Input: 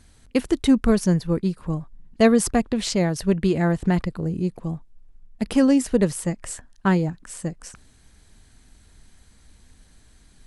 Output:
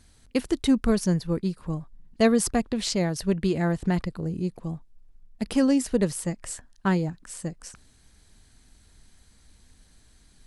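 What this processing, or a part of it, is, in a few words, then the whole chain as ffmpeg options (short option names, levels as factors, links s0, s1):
presence and air boost: -af "equalizer=f=4600:t=o:w=0.77:g=3,highshelf=f=9600:g=4,volume=0.631"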